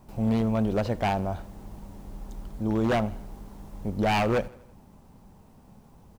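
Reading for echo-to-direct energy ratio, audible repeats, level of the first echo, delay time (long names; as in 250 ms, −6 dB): −20.5 dB, 3, −22.0 dB, 81 ms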